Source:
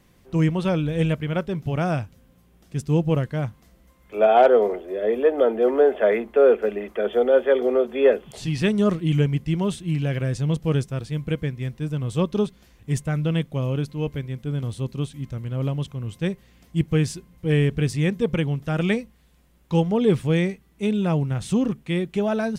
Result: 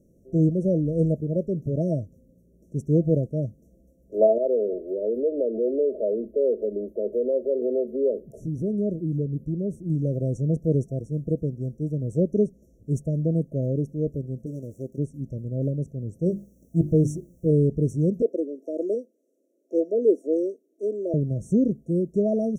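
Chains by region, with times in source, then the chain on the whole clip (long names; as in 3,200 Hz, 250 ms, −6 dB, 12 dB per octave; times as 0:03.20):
0:04.38–0:09.90: downward compressor 2 to 1, threshold −26 dBFS + flat-topped bell 6,600 Hz −8 dB 1.1 octaves
0:14.46–0:14.98: running median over 15 samples + bass and treble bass −10 dB, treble +11 dB + notch filter 440 Hz
0:16.26–0:17.51: mains-hum notches 50/100/150/200/250/300/350 Hz + leveller curve on the samples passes 1 + bit-depth reduction 10 bits, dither triangular
0:18.22–0:21.14: Butterworth high-pass 280 Hz 48 dB per octave + high-shelf EQ 7,000 Hz −7 dB
whole clip: high-shelf EQ 3,800 Hz −7 dB; brick-wall band-stop 670–5,500 Hz; parametric band 350 Hz +7 dB 2.5 octaves; level −5 dB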